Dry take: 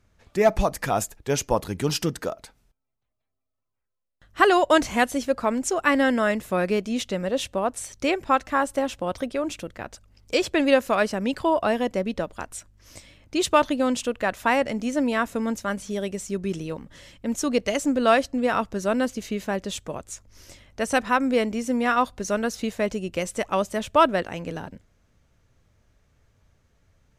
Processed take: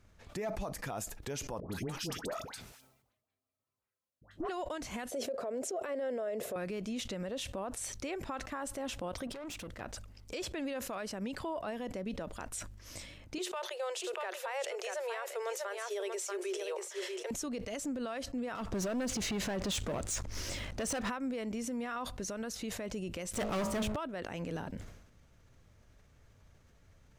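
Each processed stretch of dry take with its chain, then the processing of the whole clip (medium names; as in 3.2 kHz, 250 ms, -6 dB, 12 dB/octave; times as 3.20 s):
1.60–4.49 s: high-pass 84 Hz + valve stage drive 14 dB, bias 0.4 + phase dispersion highs, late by 99 ms, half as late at 1 kHz
5.11–6.56 s: high-pass 170 Hz + high-order bell 520 Hz +15 dB 1.1 oct + compression, threshold -18 dBFS
9.27–9.81 s: compression 12:1, threshold -31 dBFS + valve stage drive 40 dB, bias 0.5
13.38–17.31 s: Chebyshev high-pass 360 Hz, order 10 + delay 637 ms -10 dB
18.55–21.10 s: Bessel low-pass 9 kHz + compression 12:1, threshold -31 dBFS + waveshaping leveller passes 3
23.33–23.96 s: tone controls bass +7 dB, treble -2 dB + de-hum 53.2 Hz, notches 27 + waveshaping leveller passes 5
whole clip: compression 6:1, threshold -31 dBFS; peak limiter -30 dBFS; decay stretcher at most 65 dB/s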